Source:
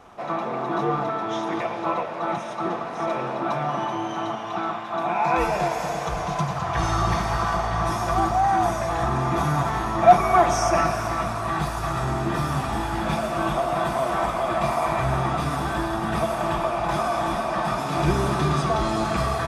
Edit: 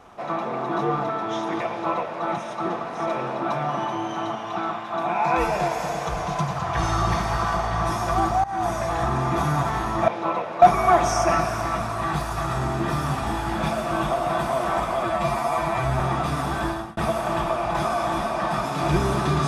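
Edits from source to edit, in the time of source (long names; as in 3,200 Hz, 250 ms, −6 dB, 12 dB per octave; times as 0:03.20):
0:01.69–0:02.23: duplicate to 0:10.08
0:08.44–0:08.85: fade in equal-power, from −21 dB
0:14.50–0:15.14: time-stretch 1.5×
0:15.83–0:16.11: fade out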